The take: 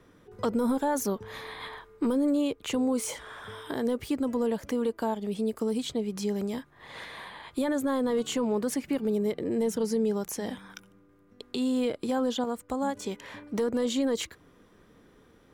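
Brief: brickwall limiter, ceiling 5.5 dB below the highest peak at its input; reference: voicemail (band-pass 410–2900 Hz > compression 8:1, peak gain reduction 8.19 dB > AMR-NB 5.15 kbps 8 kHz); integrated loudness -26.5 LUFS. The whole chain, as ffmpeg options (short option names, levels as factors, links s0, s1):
-af "alimiter=level_in=1.12:limit=0.0631:level=0:latency=1,volume=0.891,highpass=410,lowpass=2900,acompressor=threshold=0.0141:ratio=8,volume=7.5" -ar 8000 -c:a libopencore_amrnb -b:a 5150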